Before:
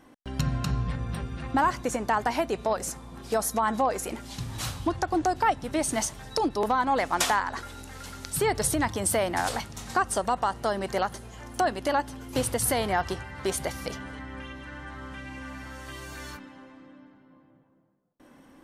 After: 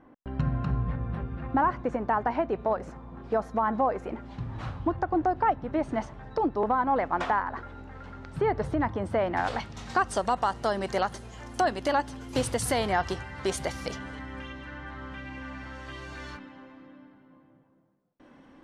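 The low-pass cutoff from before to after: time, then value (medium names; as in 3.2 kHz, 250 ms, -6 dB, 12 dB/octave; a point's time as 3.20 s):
9.12 s 1.5 kHz
9.63 s 3.7 kHz
10.40 s 7.7 kHz
14.36 s 7.7 kHz
14.79 s 4.1 kHz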